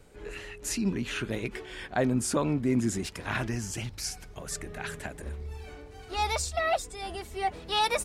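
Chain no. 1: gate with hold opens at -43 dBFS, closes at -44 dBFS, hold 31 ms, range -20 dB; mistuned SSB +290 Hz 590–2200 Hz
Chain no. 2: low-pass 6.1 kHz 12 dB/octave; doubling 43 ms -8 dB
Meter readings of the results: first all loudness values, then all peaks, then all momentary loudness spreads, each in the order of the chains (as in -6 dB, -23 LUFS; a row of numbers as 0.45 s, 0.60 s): -35.5 LUFS, -31.0 LUFS; -17.5 dBFS, -14.5 dBFS; 21 LU, 14 LU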